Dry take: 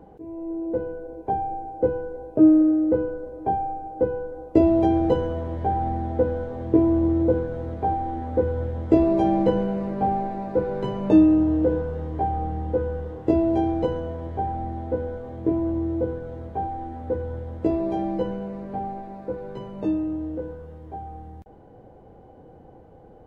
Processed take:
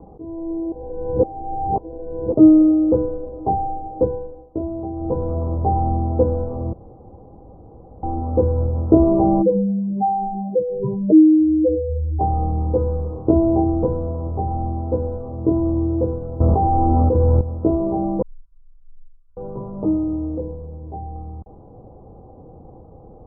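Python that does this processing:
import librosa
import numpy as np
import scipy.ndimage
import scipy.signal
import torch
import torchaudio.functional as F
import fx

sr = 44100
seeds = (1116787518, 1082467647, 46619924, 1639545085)

y = fx.spec_expand(x, sr, power=3.0, at=(9.41, 12.19), fade=0.02)
y = fx.dynamic_eq(y, sr, hz=840.0, q=2.4, threshold_db=-38.0, ratio=4.0, max_db=-4, at=(13.63, 14.51))
y = fx.env_flatten(y, sr, amount_pct=100, at=(16.4, 17.41))
y = fx.cheby2_bandstop(y, sr, low_hz=120.0, high_hz=800.0, order=4, stop_db=70, at=(18.22, 19.37))
y = fx.peak_eq(y, sr, hz=1300.0, db=-11.0, octaves=0.62, at=(20.38, 21.16))
y = fx.edit(y, sr, fx.reverse_span(start_s=0.72, length_s=1.62),
    fx.fade_down_up(start_s=4.02, length_s=1.4, db=-13.5, fade_s=0.46),
    fx.room_tone_fill(start_s=6.73, length_s=1.3), tone=tone)
y = scipy.signal.sosfilt(scipy.signal.butter(16, 1300.0, 'lowpass', fs=sr, output='sos'), y)
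y = fx.low_shelf(y, sr, hz=170.0, db=7.0)
y = y * librosa.db_to_amplitude(3.0)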